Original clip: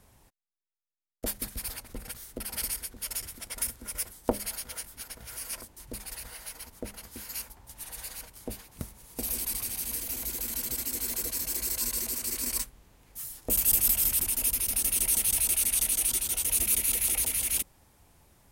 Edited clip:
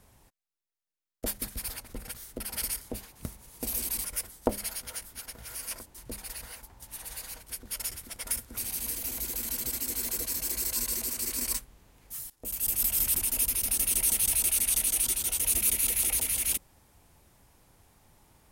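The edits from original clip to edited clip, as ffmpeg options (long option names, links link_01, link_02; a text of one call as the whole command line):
ffmpeg -i in.wav -filter_complex "[0:a]asplit=7[link_01][link_02][link_03][link_04][link_05][link_06][link_07];[link_01]atrim=end=2.812[link_08];[link_02]atrim=start=8.368:end=9.612[link_09];[link_03]atrim=start=3.868:end=6.382[link_10];[link_04]atrim=start=7.428:end=8.372[link_11];[link_05]atrim=start=2.808:end=3.872[link_12];[link_06]atrim=start=9.608:end=13.35,asetpts=PTS-STARTPTS,afade=type=out:start_time=3.738:duration=0.004:curve=hsin:silence=0.105925[link_13];[link_07]atrim=start=13.35,asetpts=PTS-STARTPTS,afade=type=in:duration=0.8:silence=0.105925[link_14];[link_08][link_09]acrossfade=duration=0.004:curve1=hsin:curve2=hsin[link_15];[link_15][link_10]acrossfade=duration=0.004:curve1=hsin:curve2=hsin[link_16];[link_16][link_11]acrossfade=duration=0.004:curve1=hsin:curve2=hsin[link_17];[link_17][link_12]acrossfade=duration=0.004:curve1=hsin:curve2=hsin[link_18];[link_13][link_14]concat=n=2:v=0:a=1[link_19];[link_18][link_19]acrossfade=duration=0.004:curve1=hsin:curve2=hsin" out.wav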